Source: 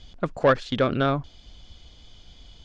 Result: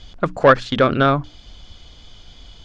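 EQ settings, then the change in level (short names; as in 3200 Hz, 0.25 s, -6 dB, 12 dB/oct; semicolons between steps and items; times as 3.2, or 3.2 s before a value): bell 1300 Hz +3.5 dB 1 oct; notches 60/120/180/240/300 Hz; +6.0 dB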